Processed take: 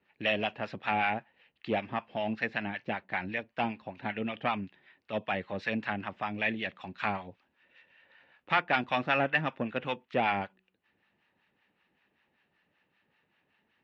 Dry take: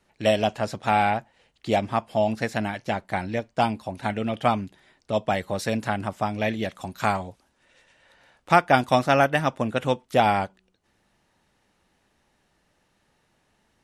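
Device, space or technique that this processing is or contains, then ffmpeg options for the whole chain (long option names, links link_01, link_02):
guitar amplifier with harmonic tremolo: -filter_complex "[0:a]acrossover=split=770[link_01][link_02];[link_01]aeval=exprs='val(0)*(1-0.7/2+0.7/2*cos(2*PI*5.2*n/s))':channel_layout=same[link_03];[link_02]aeval=exprs='val(0)*(1-0.7/2-0.7/2*cos(2*PI*5.2*n/s))':channel_layout=same[link_04];[link_03][link_04]amix=inputs=2:normalize=0,asoftclip=type=tanh:threshold=-15.5dB,highpass=110,equalizer=frequency=120:width_type=q:width=4:gain=-4,equalizer=frequency=650:width_type=q:width=4:gain=-3,equalizer=frequency=1800:width_type=q:width=4:gain=6,equalizer=frequency=2600:width_type=q:width=4:gain=8,lowpass=frequency=3800:width=0.5412,lowpass=frequency=3800:width=1.3066,volume=-3.5dB"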